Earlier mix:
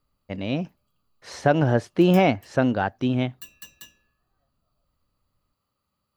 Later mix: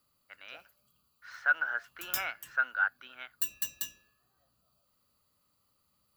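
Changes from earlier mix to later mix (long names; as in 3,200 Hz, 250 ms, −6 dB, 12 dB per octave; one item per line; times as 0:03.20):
speech: add four-pole ladder band-pass 1,500 Hz, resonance 85%
master: add high-shelf EQ 4,400 Hz +11.5 dB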